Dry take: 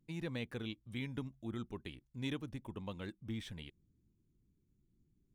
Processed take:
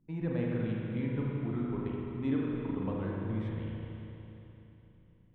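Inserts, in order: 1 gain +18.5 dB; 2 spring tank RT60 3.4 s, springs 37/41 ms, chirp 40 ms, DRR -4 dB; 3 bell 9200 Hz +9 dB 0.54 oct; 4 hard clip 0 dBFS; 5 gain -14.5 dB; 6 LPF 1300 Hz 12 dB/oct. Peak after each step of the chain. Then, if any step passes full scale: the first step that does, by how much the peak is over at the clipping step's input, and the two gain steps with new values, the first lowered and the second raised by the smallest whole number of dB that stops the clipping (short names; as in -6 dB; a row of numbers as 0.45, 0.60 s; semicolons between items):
-6.5, -3.5, -3.5, -3.5, -18.0, -20.0 dBFS; no overload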